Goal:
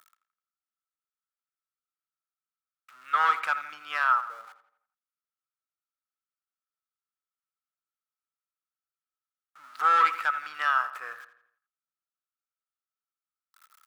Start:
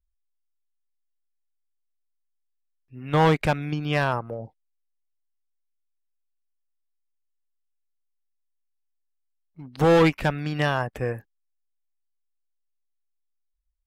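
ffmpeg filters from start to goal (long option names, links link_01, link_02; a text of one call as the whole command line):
ffmpeg -i in.wav -filter_complex "[0:a]aeval=exprs='val(0)+0.5*0.0119*sgn(val(0))':channel_layout=same,highpass=frequency=1300:width_type=q:width=14,asplit=2[link_01][link_02];[link_02]adelay=84,lowpass=frequency=3800:poles=1,volume=-13dB,asplit=2[link_03][link_04];[link_04]adelay=84,lowpass=frequency=3800:poles=1,volume=0.48,asplit=2[link_05][link_06];[link_06]adelay=84,lowpass=frequency=3800:poles=1,volume=0.48,asplit=2[link_07][link_08];[link_08]adelay=84,lowpass=frequency=3800:poles=1,volume=0.48,asplit=2[link_09][link_10];[link_10]adelay=84,lowpass=frequency=3800:poles=1,volume=0.48[link_11];[link_01][link_03][link_05][link_07][link_09][link_11]amix=inputs=6:normalize=0,volume=-8.5dB" out.wav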